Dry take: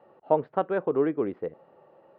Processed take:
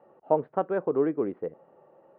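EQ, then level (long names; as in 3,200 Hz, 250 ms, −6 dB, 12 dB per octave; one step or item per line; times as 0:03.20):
low-pass filter 3,200 Hz 12 dB per octave
parametric band 89 Hz −4.5 dB 0.88 octaves
high-shelf EQ 2,100 Hz −9 dB
0.0 dB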